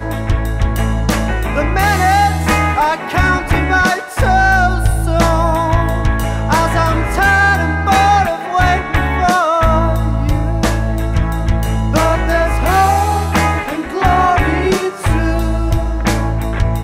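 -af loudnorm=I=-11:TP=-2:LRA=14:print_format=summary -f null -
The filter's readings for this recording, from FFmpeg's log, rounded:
Input Integrated:    -14.5 LUFS
Input True Peak:      -2.0 dBTP
Input LRA:             2.0 LU
Input Threshold:     -24.5 LUFS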